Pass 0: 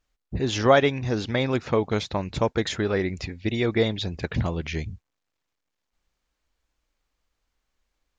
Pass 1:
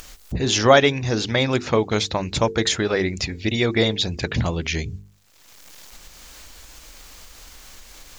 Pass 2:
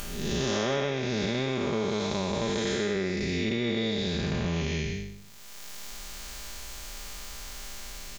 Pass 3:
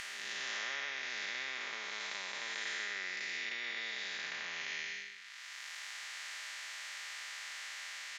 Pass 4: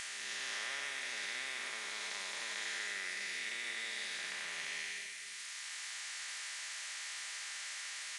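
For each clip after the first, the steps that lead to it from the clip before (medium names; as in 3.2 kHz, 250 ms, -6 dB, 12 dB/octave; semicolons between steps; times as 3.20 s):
hum notches 50/100/150/200/250/300/350/400/450 Hz; upward compressor, threshold -26 dBFS; treble shelf 4 kHz +11.5 dB; trim +3.5 dB
spectral blur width 353 ms; comb 5 ms, depth 52%; compression 6:1, threshold -29 dBFS, peak gain reduction 13 dB; trim +3.5 dB
ladder band-pass 2 kHz, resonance 80%; spectrum-flattening compressor 2:1; trim +3 dB
zero-crossing glitches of -35.5 dBFS; reverberation RT60 0.95 s, pre-delay 197 ms, DRR 9.5 dB; trim -2 dB; AAC 96 kbps 22.05 kHz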